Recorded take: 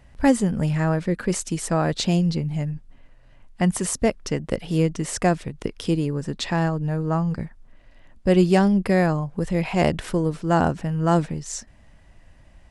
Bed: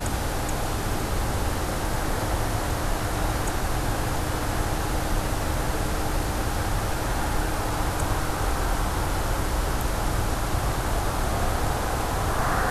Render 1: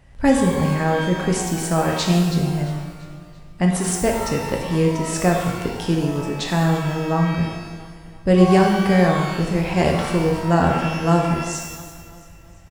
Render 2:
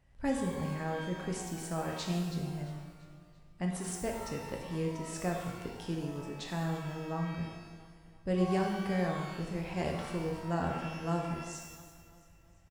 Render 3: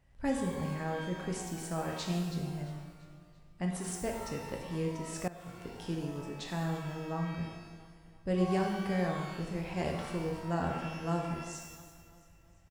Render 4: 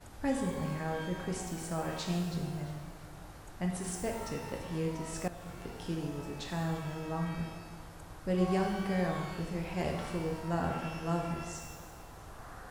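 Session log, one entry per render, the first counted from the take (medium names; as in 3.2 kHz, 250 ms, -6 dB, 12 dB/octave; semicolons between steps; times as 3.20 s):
feedback delay 339 ms, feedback 47%, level -17 dB; pitch-shifted reverb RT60 1.1 s, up +12 st, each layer -8 dB, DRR 0.5 dB
trim -16 dB
5.28–5.87 s: fade in, from -18.5 dB
add bed -24.5 dB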